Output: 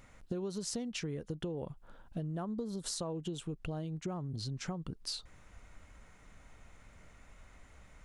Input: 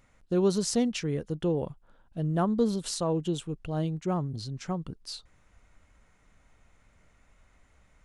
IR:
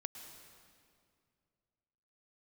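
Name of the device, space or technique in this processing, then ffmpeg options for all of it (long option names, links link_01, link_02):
serial compression, leveller first: -filter_complex "[0:a]asettb=1/sr,asplit=3[link_01][link_02][link_03];[link_01]atrim=end=2.454[link_04];[link_02]atrim=start=2.45:end=2.98,asetpts=PTS-STARTPTS,afade=type=in:duration=0.004:curve=qsin,afade=type=out:start_time=0.526:duration=0.004:curve=qsin,equalizer=frequency=2700:width_type=o:width=0.63:gain=-8[link_05];[link_03]atrim=start=2.976[link_06];[link_04][link_05]acrossfade=duration=0.004:curve1=hsin:curve2=qsin[link_07];[link_07][link_06]acrossfade=duration=0.004:curve1=qsin:curve2=hsin,acompressor=threshold=-31dB:ratio=2,acompressor=threshold=-41dB:ratio=6,volume=5dB"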